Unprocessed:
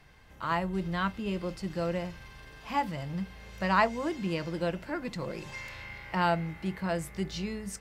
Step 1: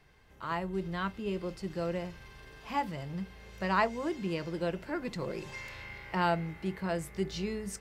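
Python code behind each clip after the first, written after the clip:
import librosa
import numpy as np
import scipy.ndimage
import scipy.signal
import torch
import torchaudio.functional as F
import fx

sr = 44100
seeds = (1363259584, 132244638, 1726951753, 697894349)

y = fx.peak_eq(x, sr, hz=400.0, db=7.0, octaves=0.3)
y = fx.rider(y, sr, range_db=4, speed_s=2.0)
y = y * 10.0 ** (-3.5 / 20.0)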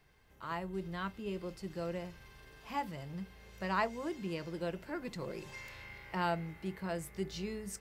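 y = fx.high_shelf(x, sr, hz=11000.0, db=9.5)
y = y * 10.0 ** (-5.0 / 20.0)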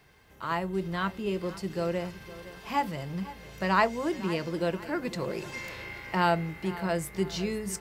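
y = fx.highpass(x, sr, hz=76.0, slope=6)
y = fx.echo_feedback(y, sr, ms=508, feedback_pct=41, wet_db=-16.5)
y = y * 10.0 ** (9.0 / 20.0)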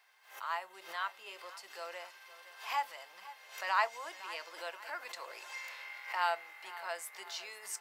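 y = scipy.signal.sosfilt(scipy.signal.butter(4, 740.0, 'highpass', fs=sr, output='sos'), x)
y = fx.pre_swell(y, sr, db_per_s=120.0)
y = y * 10.0 ** (-5.0 / 20.0)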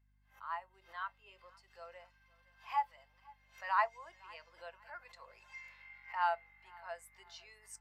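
y = fx.add_hum(x, sr, base_hz=50, snr_db=19)
y = fx.spectral_expand(y, sr, expansion=1.5)
y = y * 10.0 ** (-1.5 / 20.0)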